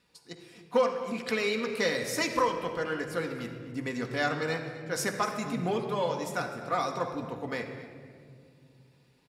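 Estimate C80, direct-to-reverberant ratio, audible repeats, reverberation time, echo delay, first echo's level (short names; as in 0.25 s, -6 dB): 7.5 dB, 2.0 dB, 1, 2.2 s, 0.251 s, -17.5 dB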